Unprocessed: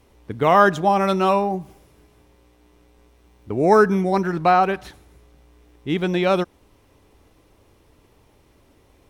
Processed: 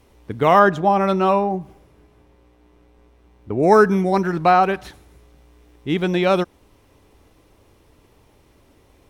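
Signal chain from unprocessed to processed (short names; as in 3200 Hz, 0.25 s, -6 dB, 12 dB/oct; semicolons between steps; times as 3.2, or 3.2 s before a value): 0.59–3.63 high shelf 3600 Hz -10.5 dB; gain +1.5 dB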